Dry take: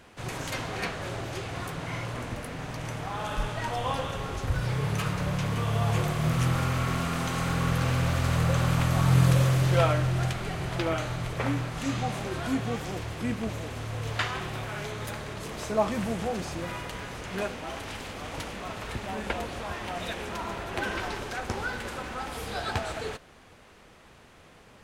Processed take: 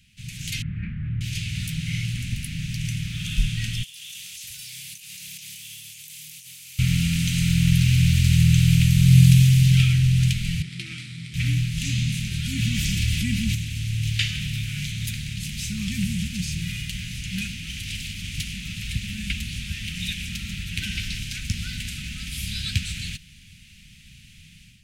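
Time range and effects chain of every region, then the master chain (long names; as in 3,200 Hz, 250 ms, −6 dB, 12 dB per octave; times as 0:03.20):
0:00.62–0:01.21: low-pass filter 1,500 Hz 24 dB per octave + flutter between parallel walls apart 4.6 metres, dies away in 0.26 s
0:03.83–0:06.79: first difference + compressor whose output falls as the input rises −49 dBFS
0:10.62–0:11.34: running median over 9 samples + loudspeaker in its box 270–9,100 Hz, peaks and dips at 410 Hz +8 dB, 730 Hz −6 dB, 1,600 Hz −6 dB, 2,800 Hz −8 dB, 6,600 Hz −7 dB + highs frequency-modulated by the lows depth 0.12 ms
0:12.55–0:13.55: comb filter 3.5 ms, depth 40% + envelope flattener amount 50%
whole clip: elliptic band-stop filter 180–2,500 Hz, stop band 60 dB; automatic gain control gain up to 10 dB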